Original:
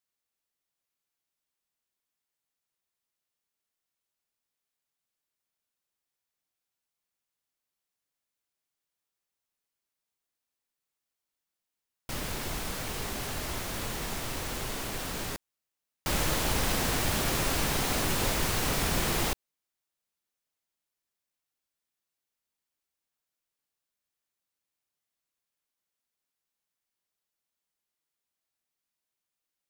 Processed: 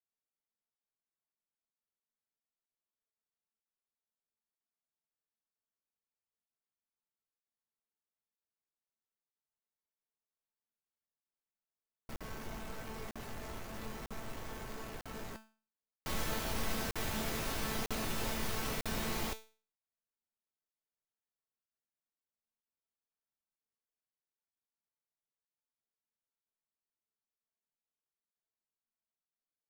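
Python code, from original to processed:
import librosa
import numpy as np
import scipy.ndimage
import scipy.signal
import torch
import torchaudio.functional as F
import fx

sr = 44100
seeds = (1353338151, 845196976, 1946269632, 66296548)

y = fx.wiener(x, sr, points=15)
y = fx.peak_eq(y, sr, hz=8400.0, db=-3.0, octaves=0.77)
y = fx.comb_fb(y, sr, f0_hz=220.0, decay_s=0.37, harmonics='all', damping=0.0, mix_pct=80)
y = fx.buffer_crackle(y, sr, first_s=0.76, period_s=0.95, block=2048, kind='zero')
y = y * 10.0 ** (2.5 / 20.0)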